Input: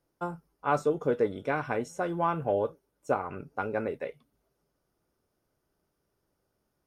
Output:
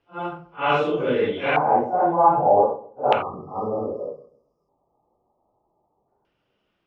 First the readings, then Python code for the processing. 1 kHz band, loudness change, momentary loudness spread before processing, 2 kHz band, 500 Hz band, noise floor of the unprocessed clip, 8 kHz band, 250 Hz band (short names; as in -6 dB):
+12.5 dB, +10.0 dB, 10 LU, +7.5 dB, +8.0 dB, -79 dBFS, n/a, +6.0 dB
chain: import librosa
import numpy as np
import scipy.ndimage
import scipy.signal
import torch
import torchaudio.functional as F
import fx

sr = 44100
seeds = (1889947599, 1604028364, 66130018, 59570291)

p1 = fx.phase_scramble(x, sr, seeds[0], window_ms=200)
p2 = fx.low_shelf(p1, sr, hz=130.0, db=-6.5)
p3 = p2 + fx.echo_filtered(p2, sr, ms=131, feedback_pct=29, hz=860.0, wet_db=-15.5, dry=0)
p4 = fx.filter_lfo_lowpass(p3, sr, shape='square', hz=0.32, low_hz=830.0, high_hz=2900.0, q=4.9)
p5 = fx.dynamic_eq(p4, sr, hz=3400.0, q=1.4, threshold_db=-48.0, ratio=4.0, max_db=5)
p6 = fx.spec_erase(p5, sr, start_s=3.22, length_s=2.86, low_hz=1300.0, high_hz=4700.0)
y = p6 * librosa.db_to_amplitude(6.0)